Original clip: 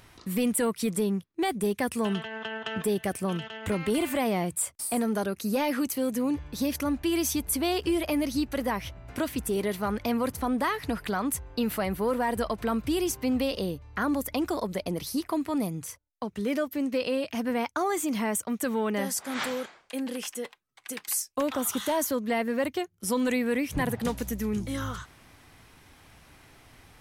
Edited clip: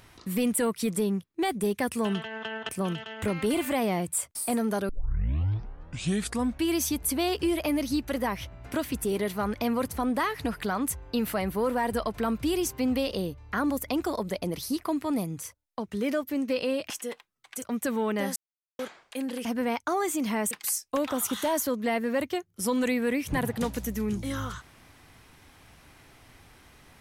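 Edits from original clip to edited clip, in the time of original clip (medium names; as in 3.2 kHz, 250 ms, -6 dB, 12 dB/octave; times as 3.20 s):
2.69–3.13 s: delete
5.33 s: tape start 1.79 s
17.34–18.40 s: swap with 20.23–20.95 s
19.14–19.57 s: mute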